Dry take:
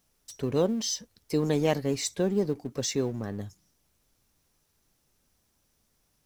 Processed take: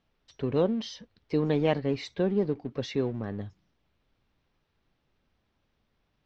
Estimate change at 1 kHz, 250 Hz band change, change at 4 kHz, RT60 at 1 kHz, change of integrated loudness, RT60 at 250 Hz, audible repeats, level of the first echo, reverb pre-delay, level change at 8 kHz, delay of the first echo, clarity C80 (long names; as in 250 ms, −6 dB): 0.0 dB, 0.0 dB, −5.0 dB, no reverb audible, −0.5 dB, no reverb audible, no echo audible, no echo audible, no reverb audible, below −15 dB, no echo audible, no reverb audible